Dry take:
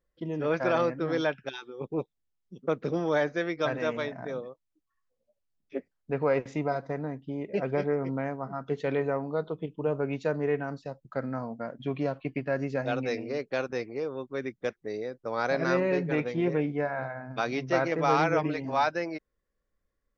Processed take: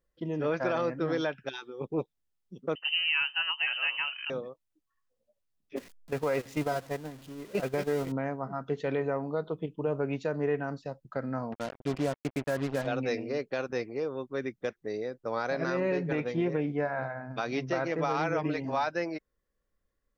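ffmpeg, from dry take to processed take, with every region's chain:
ffmpeg -i in.wav -filter_complex "[0:a]asettb=1/sr,asplit=3[link_01][link_02][link_03];[link_01]atrim=end=2.754[link_04];[link_02]atrim=start=2.75:end=4.3,asetpts=PTS-STARTPTS,afade=type=in:duration=0.004:curve=qsin,afade=type=out:start_time=1.546:duration=0.004:curve=qsin,highpass=110,lowpass=frequency=2700:width_type=q:width=0.5098,lowpass=frequency=2700:width_type=q:width=0.6013,lowpass=frequency=2700:width_type=q:width=0.9,lowpass=frequency=2700:width_type=q:width=2.563,afreqshift=-3200[link_05];[link_03]atrim=start=4.296[link_06];[link_04][link_05]acrossfade=duration=0.004:curve1=hsin:curve2=qsin[link_07];[link_07][link_06]acrossfade=duration=0.004:curve1=qsin:curve2=hsin,asettb=1/sr,asplit=3[link_08][link_09][link_10];[link_08]atrim=end=5.764[link_11];[link_09]atrim=start=5.76:end=8.12,asetpts=PTS-STARTPTS,afade=type=in:duration=0.004:curve=qsin,afade=type=out:start_time=2.356:duration=0.004:curve=qsin,aeval=exprs='val(0)+0.5*0.015*sgn(val(0))':channel_layout=same,agate=range=-12dB:threshold=-30dB:ratio=16:release=100:detection=peak,highshelf=frequency=2200:gain=6.5[link_12];[link_10]atrim=start=8.116[link_13];[link_11][link_12]acrossfade=duration=0.004:curve1=hsin:curve2=qsin[link_14];[link_14][link_13]acrossfade=duration=0.004:curve1=qsin:curve2=hsin,asettb=1/sr,asplit=3[link_15][link_16][link_17];[link_15]atrim=end=11.524[link_18];[link_16]atrim=start=11.52:end=12.87,asetpts=PTS-STARTPTS,afade=type=in:duration=0.004:curve=qsin,afade=type=out:start_time=1.346:duration=0.004:curve=qsin,lowpass=frequency=2800:width=0.5412,lowpass=frequency=2800:width=1.3066,acrusher=bits=5:mix=0:aa=0.5[link_19];[link_17]atrim=start=12.866[link_20];[link_18][link_19]acrossfade=duration=0.004:curve1=hsin:curve2=qsin[link_21];[link_21][link_20]acrossfade=duration=0.004:curve1=qsin:curve2=hsin,bandreject=frequency=2200:width=30,alimiter=limit=-19.5dB:level=0:latency=1:release=119" out.wav

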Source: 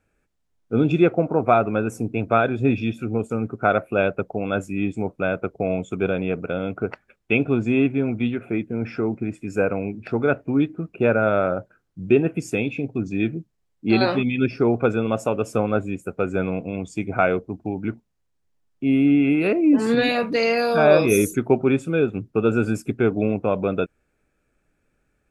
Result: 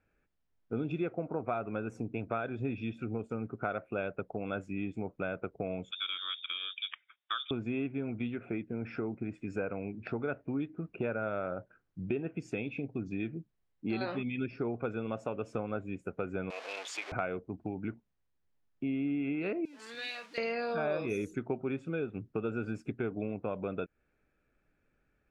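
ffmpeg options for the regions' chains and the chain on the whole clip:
ffmpeg -i in.wav -filter_complex "[0:a]asettb=1/sr,asplit=3[link_01][link_02][link_03];[link_01]atrim=end=5.914[link_04];[link_02]atrim=start=5.91:end=7.51,asetpts=PTS-STARTPTS,afade=type=in:duration=0.004:curve=qsin,afade=type=out:start_time=1.596:duration=0.004:curve=qsin,highpass=frequency=400:poles=1,lowpass=frequency=3200:width_type=q:width=0.5098,lowpass=frequency=3200:width_type=q:width=0.6013,lowpass=frequency=3200:width_type=q:width=0.9,lowpass=frequency=3200:width_type=q:width=2.563,afreqshift=-3800[link_05];[link_03]atrim=start=7.506[link_06];[link_04][link_05]acrossfade=duration=0.004:curve1=hsin:curve2=qsin[link_07];[link_07][link_06]acrossfade=duration=0.004:curve1=qsin:curve2=hsin,asettb=1/sr,asplit=3[link_08][link_09][link_10];[link_08]atrim=end=16.504[link_11];[link_09]atrim=start=16.5:end=17.12,asetpts=PTS-STARTPTS,afade=type=in:duration=0.004:curve=qsin,afade=type=out:start_time=0.616:duration=0.004:curve=qsin,aeval=exprs='val(0)+0.5*0.0335*sgn(val(0))':channel_layout=same,highpass=frequency=490:width=0.5412,highpass=frequency=490:width=1.3066,tiltshelf=frequency=970:gain=-5.5[link_12];[link_10]atrim=start=17.116[link_13];[link_11][link_12]acrossfade=duration=0.004:curve1=hsin:curve2=qsin[link_14];[link_14][link_13]acrossfade=duration=0.004:curve1=qsin:curve2=hsin,asettb=1/sr,asplit=3[link_15][link_16][link_17];[link_15]atrim=end=19.654[link_18];[link_16]atrim=start=19.65:end=20.38,asetpts=PTS-STARTPTS,afade=type=in:duration=0.004:curve=qsin,afade=type=out:start_time=0.726:duration=0.004:curve=qsin,aeval=exprs='val(0)+0.5*0.0299*sgn(val(0))':channel_layout=same,aderivative[link_19];[link_17]atrim=start=20.376[link_20];[link_18][link_19]acrossfade=duration=0.004:curve1=hsin:curve2=qsin[link_21];[link_21][link_20]acrossfade=duration=0.004:curve1=qsin:curve2=hsin,lowpass=4200,equalizer=frequency=1700:width=1.5:gain=2,acompressor=threshold=-28dB:ratio=3,volume=-6dB" out.wav

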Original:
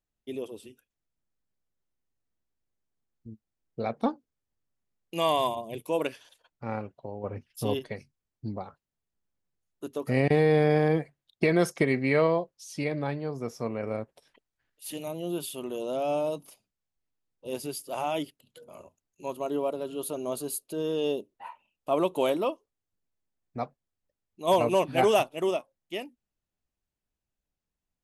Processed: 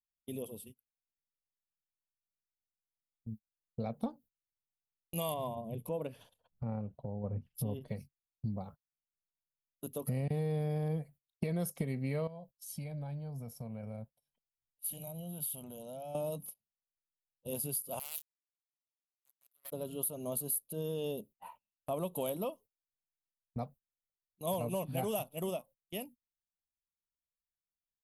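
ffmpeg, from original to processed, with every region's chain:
ffmpeg -i in.wav -filter_complex "[0:a]asettb=1/sr,asplit=3[link_01][link_02][link_03];[link_01]atrim=end=5.344[link_04];[link_02]atrim=start=5.34:end=7.88,asetpts=PTS-STARTPTS,afade=type=in:duration=0.004:curve=qsin,afade=type=out:start_time=2.536:duration=0.004:curve=qsin,lowpass=frequency=1100:poles=1,acompressor=mode=upward:threshold=-34dB:ratio=2.5:attack=3.2:release=140:knee=2.83:detection=peak[link_05];[link_03]atrim=start=7.876[link_06];[link_04][link_05]acrossfade=duration=0.004:curve1=hsin:curve2=qsin[link_07];[link_07][link_06]acrossfade=duration=0.004:curve1=qsin:curve2=hsin,asettb=1/sr,asplit=3[link_08][link_09][link_10];[link_08]atrim=end=12.274[link_11];[link_09]atrim=start=12.27:end=16.15,asetpts=PTS-STARTPTS,afade=type=in:duration=0.004:curve=qsin,afade=type=out:start_time=3.876:duration=0.004:curve=qsin,aecho=1:1:1.3:0.5,atrim=end_sample=171108,acompressor=threshold=-43dB:ratio=2.5:attack=3.2:release=140:knee=1:detection=peak[link_12];[link_10]atrim=start=16.146[link_13];[link_11][link_12]acrossfade=duration=0.004:curve1=hsin:curve2=qsin[link_14];[link_14][link_13]acrossfade=duration=0.004:curve1=qsin:curve2=hsin,asettb=1/sr,asplit=3[link_15][link_16][link_17];[link_15]atrim=end=17.994[link_18];[link_16]atrim=start=17.99:end=19.72,asetpts=PTS-STARTPTS,afade=type=in:duration=0.004:curve=qsin,afade=type=out:start_time=1.726:duration=0.004:curve=qsin,highpass=340,acrusher=bits=3:mix=0:aa=0.5,aderivative[link_19];[link_17]atrim=start=19.716[link_20];[link_18][link_19]acrossfade=duration=0.004:curve1=hsin:curve2=qsin[link_21];[link_21][link_20]acrossfade=duration=0.004:curve1=qsin:curve2=hsin,agate=range=-22dB:threshold=-47dB:ratio=16:detection=peak,firequalizer=gain_entry='entry(200,0);entry(330,-16);entry(490,-8);entry(1700,-18);entry(3100,-10);entry(6200,-11);entry(12000,10)':delay=0.05:min_phase=1,acompressor=threshold=-37dB:ratio=4,volume=4dB" out.wav

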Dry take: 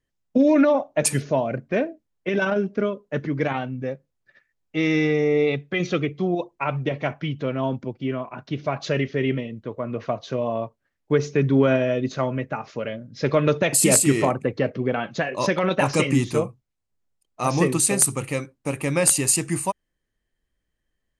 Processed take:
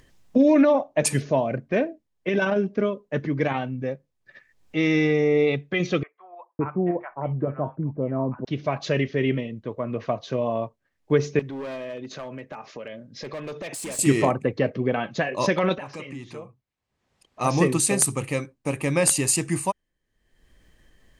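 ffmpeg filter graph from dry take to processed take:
ffmpeg -i in.wav -filter_complex "[0:a]asettb=1/sr,asplit=3[link_01][link_02][link_03];[link_01]atrim=end=6.034[link_04];[link_02]atrim=start=6.03:end=8.45,asetpts=PTS-STARTPTS,afade=type=in:duration=0.004:curve=qsin,afade=type=out:start_time=2.416:duration=0.004:curve=qsin,lowpass=frequency=1400:width=0.5412,lowpass=frequency=1400:width=1.3066,acrossover=split=960[link_05][link_06];[link_05]adelay=560[link_07];[link_07][link_06]amix=inputs=2:normalize=0,atrim=end_sample=106722[link_08];[link_03]atrim=start=8.446[link_09];[link_04][link_08]acrossfade=duration=0.004:curve1=hsin:curve2=qsin[link_10];[link_10][link_09]acrossfade=duration=0.004:curve1=qsin:curve2=hsin,asettb=1/sr,asplit=3[link_11][link_12][link_13];[link_11]atrim=end=11.394[link_14];[link_12]atrim=start=11.39:end=13.99,asetpts=PTS-STARTPTS,afade=type=in:duration=0.004:curve=qsin,afade=type=out:start_time=2.596:duration=0.004:curve=qsin,highpass=frequency=300:poles=1,asoftclip=type=hard:threshold=-20dB,acompressor=threshold=-33dB:ratio=4:attack=3.2:release=140:knee=1:detection=peak[link_15];[link_13]atrim=start=13.986[link_16];[link_14][link_15]acrossfade=duration=0.004:curve1=hsin:curve2=qsin[link_17];[link_17][link_16]acrossfade=duration=0.004:curve1=qsin:curve2=hsin,asettb=1/sr,asplit=3[link_18][link_19][link_20];[link_18]atrim=end=15.784[link_21];[link_19]atrim=start=15.78:end=17.41,asetpts=PTS-STARTPTS,afade=type=in:duration=0.004:curve=qsin,afade=type=out:start_time=1.626:duration=0.004:curve=qsin,highpass=frequency=1300:poles=1,aemphasis=mode=reproduction:type=riaa,acompressor=threshold=-40dB:ratio=2:attack=3.2:release=140:knee=1:detection=peak[link_22];[link_20]atrim=start=17.406[link_23];[link_21][link_22]acrossfade=duration=0.004:curve1=hsin:curve2=qsin[link_24];[link_24][link_23]acrossfade=duration=0.004:curve1=qsin:curve2=hsin,highshelf=frequency=11000:gain=-7.5,bandreject=frequency=1400:width=13,acompressor=mode=upward:threshold=-38dB:ratio=2.5" out.wav

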